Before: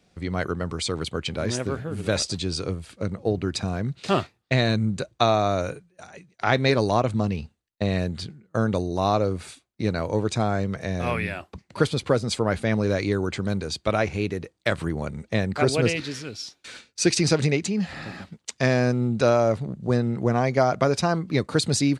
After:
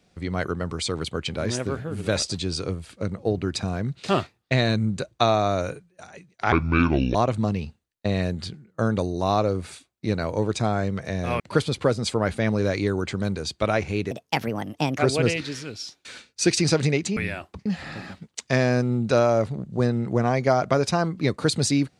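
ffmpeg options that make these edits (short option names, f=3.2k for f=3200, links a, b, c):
-filter_complex "[0:a]asplit=8[a][b][c][d][e][f][g][h];[a]atrim=end=6.524[i];[b]atrim=start=6.52:end=6.91,asetpts=PTS-STARTPTS,asetrate=27342,aresample=44100,atrim=end_sample=27740,asetpts=PTS-STARTPTS[j];[c]atrim=start=6.906:end=11.162[k];[d]atrim=start=11.648:end=14.364[l];[e]atrim=start=14.36:end=15.58,asetpts=PTS-STARTPTS,asetrate=61299,aresample=44100,atrim=end_sample=38706,asetpts=PTS-STARTPTS[m];[f]atrim=start=15.576:end=17.762[n];[g]atrim=start=11.158:end=11.652[o];[h]atrim=start=17.758[p];[i][j]acrossfade=d=0.004:c1=hsin:c2=hsin[q];[q][k]acrossfade=d=0.004:c1=hsin:c2=hsin[r];[r][l]acrossfade=d=0.004:c1=hsin:c2=hsin[s];[s][m]acrossfade=d=0.004:c1=hsin:c2=hsin[t];[t][n]acrossfade=d=0.004:c1=hsin:c2=hsin[u];[u][o]acrossfade=d=0.004:c1=hsin:c2=hsin[v];[v][p]acrossfade=d=0.004:c1=hsin:c2=hsin"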